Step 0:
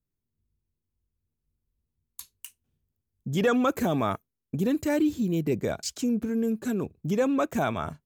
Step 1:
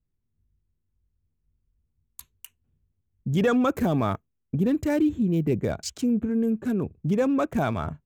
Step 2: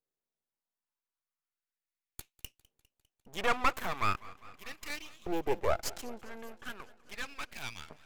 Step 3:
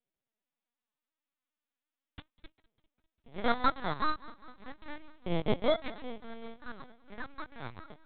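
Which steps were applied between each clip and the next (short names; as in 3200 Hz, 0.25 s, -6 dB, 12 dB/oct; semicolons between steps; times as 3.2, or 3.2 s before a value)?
Wiener smoothing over 9 samples; low shelf 160 Hz +9 dB
LFO high-pass saw up 0.38 Hz 450–3100 Hz; half-wave rectifier; warbling echo 0.201 s, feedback 70%, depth 93 cents, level -21.5 dB
FFT order left unsorted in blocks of 16 samples; LPC vocoder at 8 kHz pitch kept; gain +2 dB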